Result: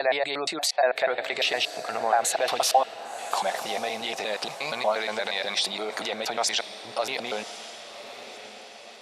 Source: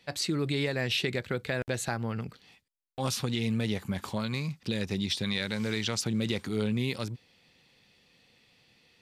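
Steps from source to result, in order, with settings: slices played last to first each 118 ms, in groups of 7; level rider gain up to 6 dB; peak limiter -22 dBFS, peak gain reduction 11 dB; resonant high-pass 700 Hz, resonance Q 5.6; spectral gate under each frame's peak -30 dB strong; on a send: echo that smears into a reverb 1085 ms, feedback 46%, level -12.5 dB; on the sum: trim +7 dB

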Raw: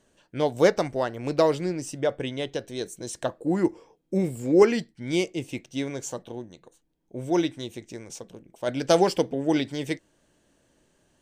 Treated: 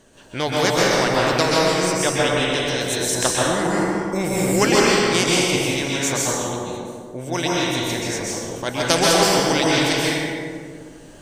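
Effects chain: random-step tremolo; plate-style reverb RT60 1.5 s, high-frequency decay 0.65×, pre-delay 115 ms, DRR -6.5 dB; spectrum-flattening compressor 2:1; trim -1.5 dB

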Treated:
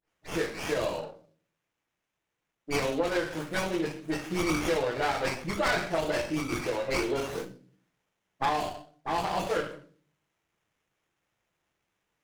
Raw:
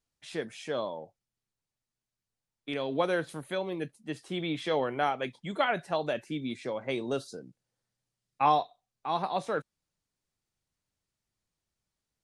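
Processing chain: delay that grows with frequency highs late, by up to 104 ms; reverberation RT60 0.45 s, pre-delay 6 ms, DRR -0.5 dB; compression 4:1, threshold -27 dBFS, peak gain reduction 9.5 dB; frequency weighting D; sliding maximum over 9 samples; trim +2 dB

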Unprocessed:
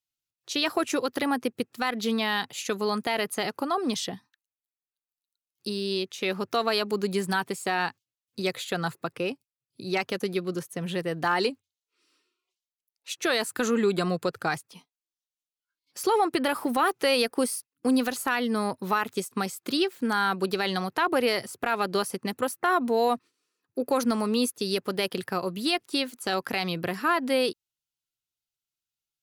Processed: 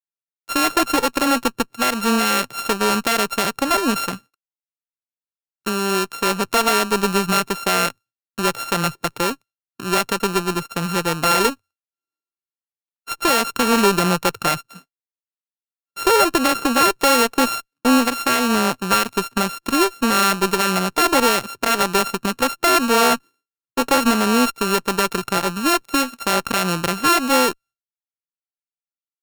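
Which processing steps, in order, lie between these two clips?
sorted samples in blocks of 32 samples; expander -50 dBFS; Chebyshev shaper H 6 -23 dB, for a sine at -12.5 dBFS; trim +8 dB

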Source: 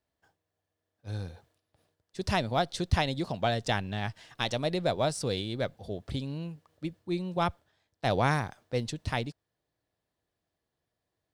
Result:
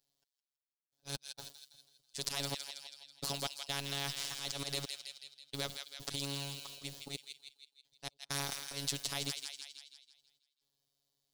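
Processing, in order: gate with hold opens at -50 dBFS; resonant high shelf 2.8 kHz +12.5 dB, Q 1.5; peak limiter -21.5 dBFS, peak gain reduction 14 dB; slow attack 110 ms; trance gate "x...x.xxxx" 65 bpm -60 dB; robot voice 140 Hz; on a send: feedback echo behind a high-pass 163 ms, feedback 43%, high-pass 2 kHz, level -9 dB; on the sum: spectrum-flattening compressor 2:1; trim +3 dB

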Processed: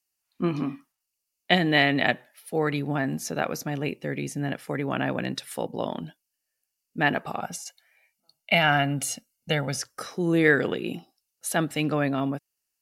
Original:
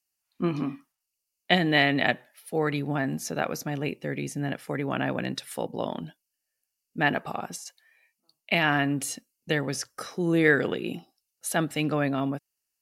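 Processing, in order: 7.42–9.79 s: comb 1.4 ms, depth 63%; trim +1 dB

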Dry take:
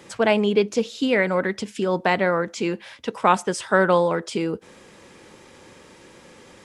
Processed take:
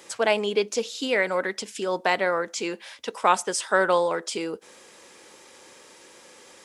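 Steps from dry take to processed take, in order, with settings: tone controls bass -15 dB, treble +7 dB; trim -2 dB

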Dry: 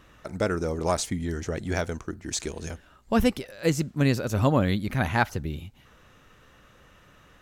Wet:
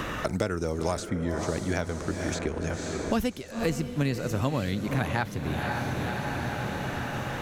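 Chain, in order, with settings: on a send: echo that smears into a reverb 522 ms, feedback 49%, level -9.5 dB; on the sum: three bands compressed up and down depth 100%; trim -3.5 dB

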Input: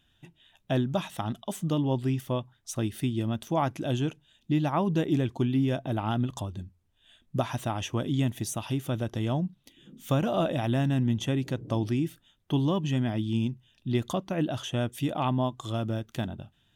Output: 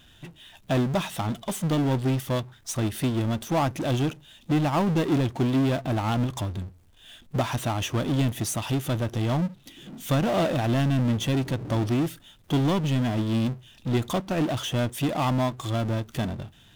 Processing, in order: power-law waveshaper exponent 0.5; upward expansion 1.5:1, over -44 dBFS

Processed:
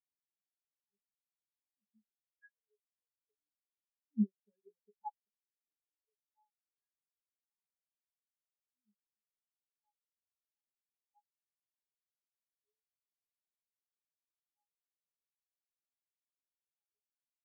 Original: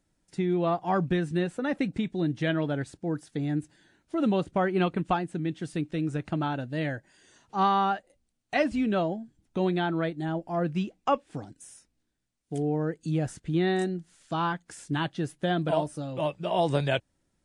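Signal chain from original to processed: Doppler pass-by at 4.52 s, 9 m/s, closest 12 m; high-pass 320 Hz 12 dB/octave; pitch-class resonator G#, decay 0.15 s; spectral contrast expander 4:1; trim +7 dB

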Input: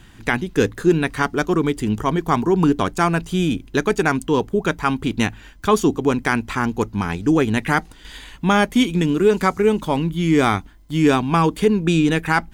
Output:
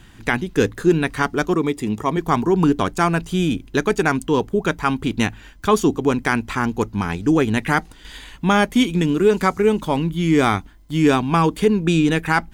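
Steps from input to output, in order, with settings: 1.54–2.17 s: comb of notches 1.5 kHz

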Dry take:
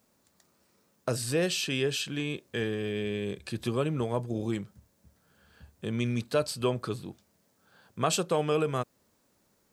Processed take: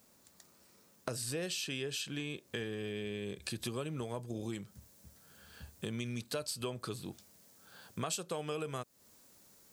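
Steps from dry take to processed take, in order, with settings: treble shelf 3.4 kHz +5.5 dB, from 3.42 s +10.5 dB; compression 4:1, threshold -39 dBFS, peak gain reduction 17.5 dB; trim +1.5 dB

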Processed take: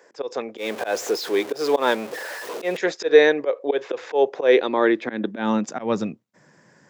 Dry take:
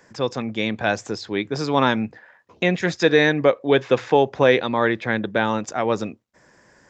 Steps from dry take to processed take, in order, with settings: 0.57–2.77 s: jump at every zero crossing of -27 dBFS; slow attack 130 ms; high-pass sweep 440 Hz -> 150 Hz, 4.33–6.15 s; trim -2 dB

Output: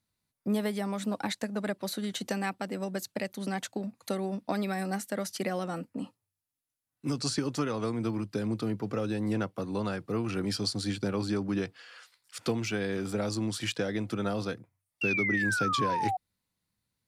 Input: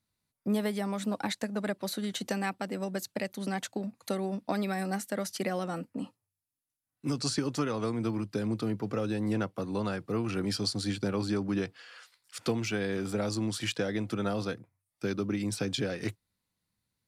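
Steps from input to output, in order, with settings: painted sound fall, 15.01–16.17 s, 730–2800 Hz -30 dBFS

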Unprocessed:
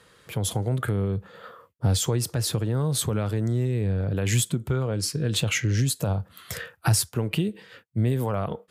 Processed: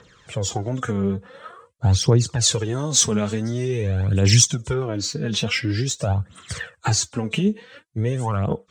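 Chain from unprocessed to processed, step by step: knee-point frequency compression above 3.3 kHz 1.5:1; 2.41–4.74 s: treble shelf 3.1 kHz +11.5 dB; phaser 0.47 Hz, delay 5 ms, feedback 61%; trim +1.5 dB

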